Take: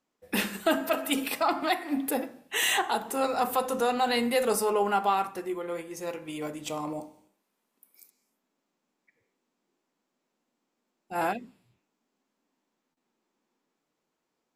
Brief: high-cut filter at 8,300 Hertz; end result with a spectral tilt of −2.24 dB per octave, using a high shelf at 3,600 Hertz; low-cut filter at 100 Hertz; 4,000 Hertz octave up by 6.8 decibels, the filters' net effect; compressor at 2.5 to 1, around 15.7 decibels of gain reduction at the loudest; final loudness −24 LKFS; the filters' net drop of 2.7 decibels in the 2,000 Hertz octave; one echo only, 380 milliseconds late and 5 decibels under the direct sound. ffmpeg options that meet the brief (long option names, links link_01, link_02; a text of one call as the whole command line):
ffmpeg -i in.wav -af "highpass=100,lowpass=8300,equalizer=frequency=2000:width_type=o:gain=-8.5,highshelf=frequency=3600:gain=7.5,equalizer=frequency=4000:width_type=o:gain=7.5,acompressor=threshold=-45dB:ratio=2.5,aecho=1:1:380:0.562,volume=16.5dB" out.wav